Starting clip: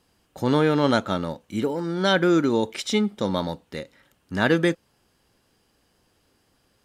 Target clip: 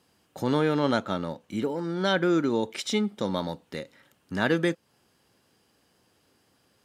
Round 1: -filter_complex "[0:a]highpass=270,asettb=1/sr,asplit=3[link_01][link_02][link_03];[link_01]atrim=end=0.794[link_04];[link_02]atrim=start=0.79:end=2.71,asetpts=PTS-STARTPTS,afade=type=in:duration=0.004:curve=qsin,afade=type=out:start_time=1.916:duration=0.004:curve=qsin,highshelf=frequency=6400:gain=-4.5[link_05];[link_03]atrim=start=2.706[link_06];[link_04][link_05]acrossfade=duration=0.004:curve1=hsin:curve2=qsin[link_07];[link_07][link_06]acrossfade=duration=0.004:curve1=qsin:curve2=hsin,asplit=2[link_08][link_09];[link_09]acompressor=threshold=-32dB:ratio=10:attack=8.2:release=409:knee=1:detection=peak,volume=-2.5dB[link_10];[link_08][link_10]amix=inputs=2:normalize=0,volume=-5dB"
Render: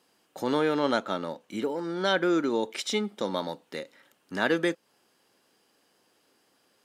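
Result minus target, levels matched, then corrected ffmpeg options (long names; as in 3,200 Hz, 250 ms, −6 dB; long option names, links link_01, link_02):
125 Hz band −7.0 dB
-filter_complex "[0:a]highpass=96,asettb=1/sr,asplit=3[link_01][link_02][link_03];[link_01]atrim=end=0.794[link_04];[link_02]atrim=start=0.79:end=2.71,asetpts=PTS-STARTPTS,afade=type=in:duration=0.004:curve=qsin,afade=type=out:start_time=1.916:duration=0.004:curve=qsin,highshelf=frequency=6400:gain=-4.5[link_05];[link_03]atrim=start=2.706[link_06];[link_04][link_05]acrossfade=duration=0.004:curve1=hsin:curve2=qsin[link_07];[link_07][link_06]acrossfade=duration=0.004:curve1=qsin:curve2=hsin,asplit=2[link_08][link_09];[link_09]acompressor=threshold=-32dB:ratio=10:attack=8.2:release=409:knee=1:detection=peak,volume=-2.5dB[link_10];[link_08][link_10]amix=inputs=2:normalize=0,volume=-5dB"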